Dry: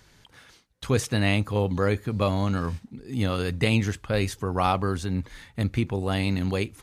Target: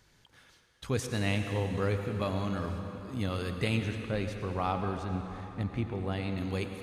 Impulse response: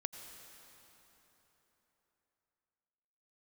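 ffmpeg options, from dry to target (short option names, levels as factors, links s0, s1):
-filter_complex "[0:a]asettb=1/sr,asplit=3[s0][s1][s2];[s0]atrim=end=3.794[s3];[s1]atrim=start=3.79:end=6.38,asetpts=PTS-STARTPTS,afade=t=in:d=0.004:c=qsin,afade=t=out:st=2.586:d=0.004:c=qsin,lowpass=f=2600:p=1[s4];[s2]atrim=start=6.376[s5];[s3][s4]acrossfade=d=0.004:c1=hsin:c2=qsin[s6];[s6][s5]acrossfade=d=0.004:c1=qsin:c2=hsin[s7];[1:a]atrim=start_sample=2205[s8];[s7][s8]afir=irnorm=-1:irlink=0,volume=0.531"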